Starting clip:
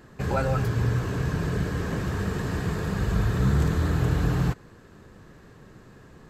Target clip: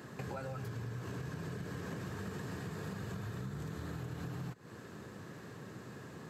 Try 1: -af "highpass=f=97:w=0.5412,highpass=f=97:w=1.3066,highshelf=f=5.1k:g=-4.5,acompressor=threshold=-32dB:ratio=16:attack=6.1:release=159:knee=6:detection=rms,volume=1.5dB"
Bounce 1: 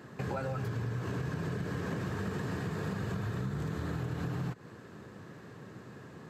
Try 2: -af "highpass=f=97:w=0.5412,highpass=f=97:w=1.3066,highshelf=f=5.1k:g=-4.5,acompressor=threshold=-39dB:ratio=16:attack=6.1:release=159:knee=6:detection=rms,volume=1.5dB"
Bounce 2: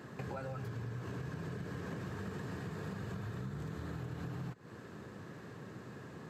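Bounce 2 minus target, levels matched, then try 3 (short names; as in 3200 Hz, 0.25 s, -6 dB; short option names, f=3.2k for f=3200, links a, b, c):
8000 Hz band -5.0 dB
-af "highpass=f=97:w=0.5412,highpass=f=97:w=1.3066,highshelf=f=5.1k:g=3,acompressor=threshold=-39dB:ratio=16:attack=6.1:release=159:knee=6:detection=rms,volume=1.5dB"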